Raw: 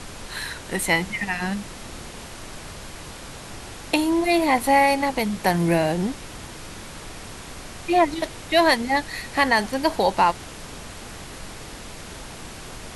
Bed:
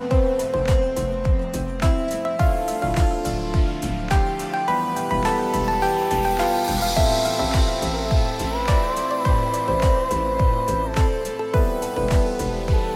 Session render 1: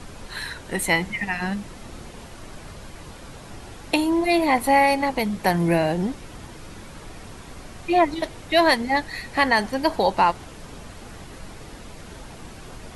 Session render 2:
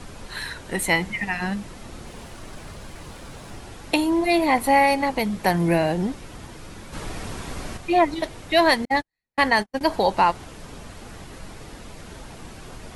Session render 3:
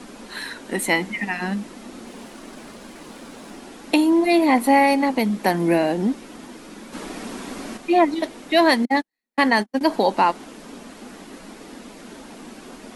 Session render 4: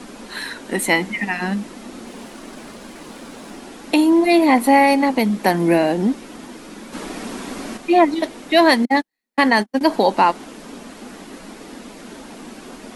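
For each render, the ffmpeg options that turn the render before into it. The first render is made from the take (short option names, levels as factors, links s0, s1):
-af "afftdn=nr=7:nf=-39"
-filter_complex "[0:a]asettb=1/sr,asplit=3[s0][s1][s2];[s0]atrim=end=2.064[s3];[s1]atrim=start=2.06:end=3.6,asetpts=PTS-STARTPTS,afade=t=in:d=0.004:c=qsin,afade=t=out:st=1.536:d=0.004:c=qsin,aeval=exprs='val(0)+0.5*0.00251*sgn(val(0))':c=same[s4];[s2]atrim=start=3.596[s5];[s3][s4]acrossfade=d=0.004:c1=hsin:c2=qsin[s6];[s6][s5]acrossfade=d=0.004:c1=qsin:c2=hsin,asplit=3[s7][s8][s9];[s7]afade=t=out:st=6.92:d=0.02[s10];[s8]acontrast=82,afade=t=in:st=6.92:d=0.02,afade=t=out:st=7.76:d=0.02[s11];[s9]afade=t=in:st=7.76:d=0.02[s12];[s10][s11][s12]amix=inputs=3:normalize=0,asettb=1/sr,asplit=3[s13][s14][s15];[s13]atrim=end=8.854[s16];[s14]atrim=start=8.85:end=9.81,asetpts=PTS-STARTPTS,afade=t=in:d=0.004:c=qsin,afade=t=out:st=0.956:d=0.004:c=qsin,agate=range=0.00224:threshold=0.0562:ratio=16:release=100:detection=peak[s17];[s15]atrim=start=9.806[s18];[s16][s17]acrossfade=d=0.004:c1=hsin:c2=qsin[s19];[s19][s18]acrossfade=d=0.004:c1=qsin:c2=hsin"
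-af "lowshelf=f=160:t=q:w=3:g=-13.5"
-af "volume=1.41,alimiter=limit=0.708:level=0:latency=1"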